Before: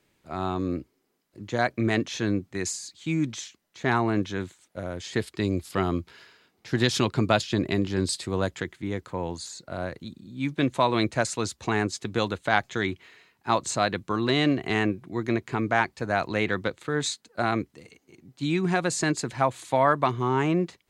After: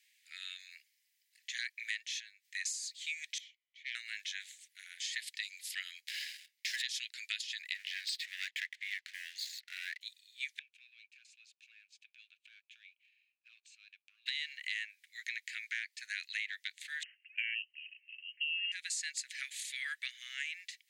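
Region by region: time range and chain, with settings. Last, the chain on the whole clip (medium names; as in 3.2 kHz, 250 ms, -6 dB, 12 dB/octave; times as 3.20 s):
2.05–2.45 s: bass shelf 490 Hz +3 dB + compression 12:1, threshold -32 dBFS
3.38–3.95 s: self-modulated delay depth 0.21 ms + vowel filter i
6.00–6.82 s: high-pass 1.1 kHz 24 dB/octave + waveshaping leveller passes 3
7.75–10.01 s: low-pass 3 kHz + waveshaping leveller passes 2
10.59–14.26 s: waveshaping leveller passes 2 + compression 3:1, threshold -37 dBFS + vowel filter a
17.03–18.72 s: de-esser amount 35% + frequency inversion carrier 3 kHz
whole clip: steep high-pass 1.8 kHz 72 dB/octave; compression 6:1, threshold -38 dBFS; trim +2.5 dB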